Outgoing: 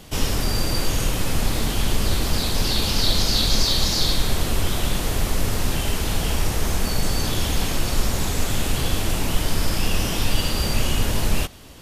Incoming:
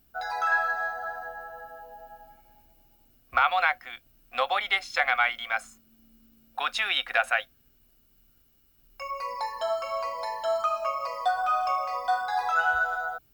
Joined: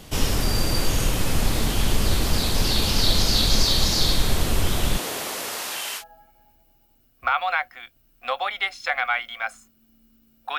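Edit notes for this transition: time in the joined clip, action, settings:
outgoing
0:04.97–0:06.04: high-pass filter 290 Hz → 1,200 Hz
0:06.00: continue with incoming from 0:02.10, crossfade 0.08 s

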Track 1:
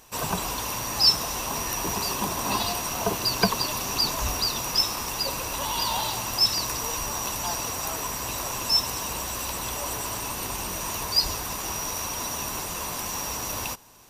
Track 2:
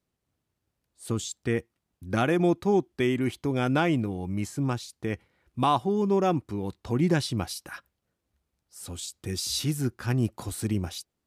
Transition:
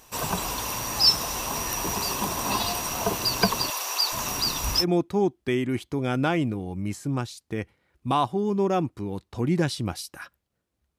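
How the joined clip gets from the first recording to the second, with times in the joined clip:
track 1
0:03.70–0:04.85: multiband delay without the direct sound highs, lows 420 ms, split 470 Hz
0:04.82: continue with track 2 from 0:02.34, crossfade 0.06 s

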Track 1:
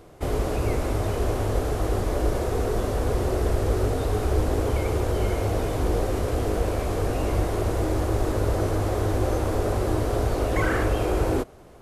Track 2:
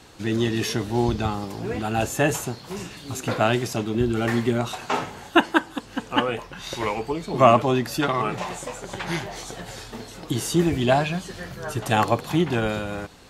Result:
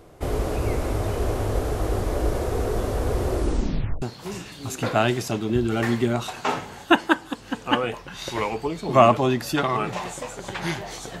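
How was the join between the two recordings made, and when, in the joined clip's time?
track 1
0:03.34: tape stop 0.68 s
0:04.02: continue with track 2 from 0:02.47

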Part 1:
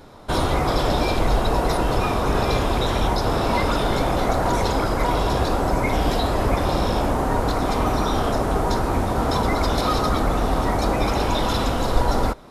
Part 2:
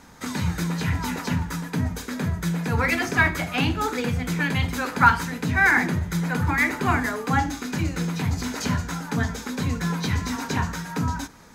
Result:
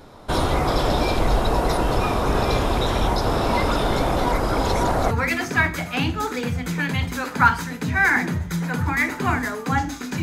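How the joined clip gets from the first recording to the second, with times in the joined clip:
part 1
0:04.26–0:05.11: reverse
0:05.11: continue with part 2 from 0:02.72

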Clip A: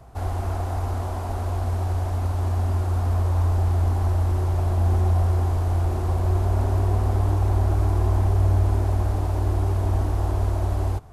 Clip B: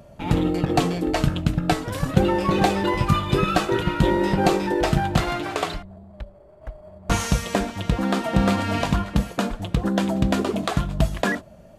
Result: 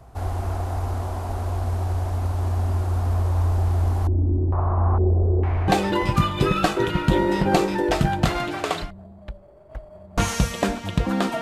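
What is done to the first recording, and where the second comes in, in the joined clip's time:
clip A
0:04.07–0:05.68: low-pass on a step sequencer 2.2 Hz 300–3,100 Hz
0:05.68: continue with clip B from 0:02.60

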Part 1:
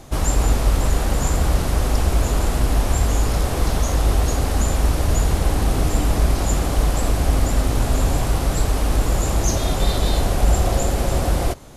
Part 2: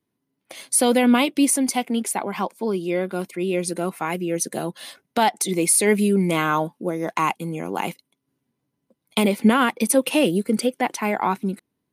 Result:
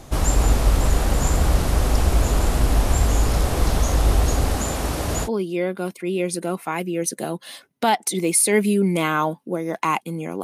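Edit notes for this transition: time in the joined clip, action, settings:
part 1
0:04.55–0:05.29: high-pass filter 150 Hz 6 dB per octave
0:05.26: continue with part 2 from 0:02.60, crossfade 0.06 s

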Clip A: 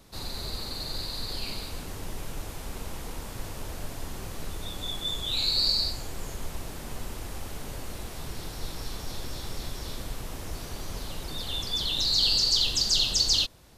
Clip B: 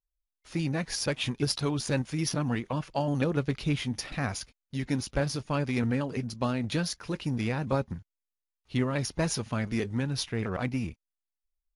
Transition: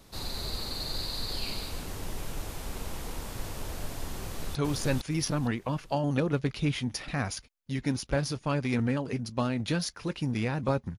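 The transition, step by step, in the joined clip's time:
clip A
0:04.18–0:04.55: delay throw 460 ms, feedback 30%, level −0.5 dB
0:04.55: continue with clip B from 0:01.59

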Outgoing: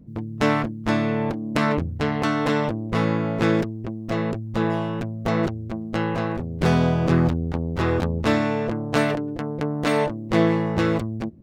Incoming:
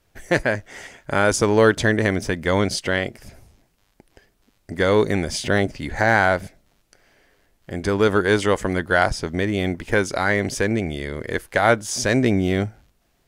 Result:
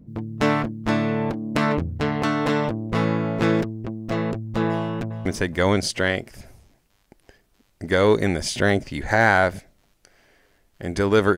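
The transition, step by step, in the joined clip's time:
outgoing
0:04.68–0:05.26: delay throw 420 ms, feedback 30%, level −15.5 dB
0:05.26: continue with incoming from 0:02.14

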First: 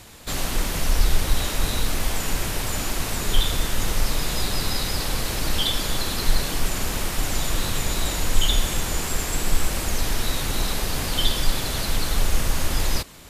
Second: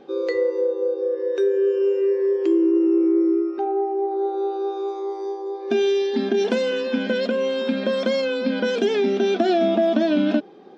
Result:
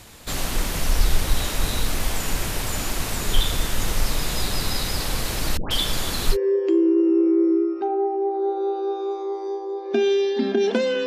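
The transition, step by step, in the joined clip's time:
first
0:05.57–0:06.37: all-pass dispersion highs, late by 138 ms, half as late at 980 Hz
0:06.34: continue with second from 0:02.11, crossfade 0.06 s

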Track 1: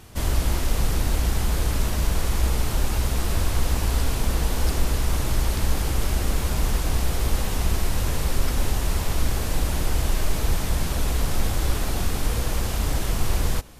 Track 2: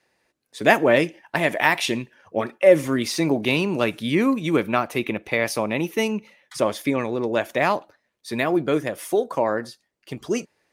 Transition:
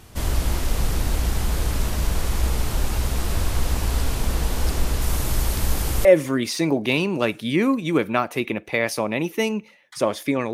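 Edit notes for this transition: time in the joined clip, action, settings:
track 1
0:05.01–0:06.05: high-shelf EQ 8,600 Hz +7.5 dB
0:06.05: continue with track 2 from 0:02.64

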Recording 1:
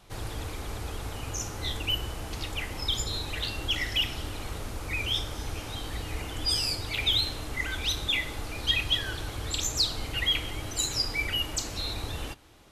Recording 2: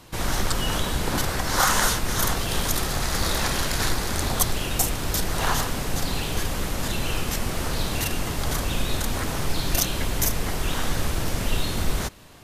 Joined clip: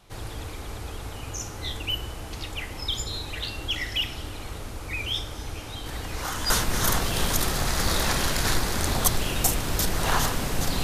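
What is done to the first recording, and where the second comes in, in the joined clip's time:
recording 1
0:05.86: mix in recording 2 from 0:01.21 0.64 s −12.5 dB
0:06.50: continue with recording 2 from 0:01.85

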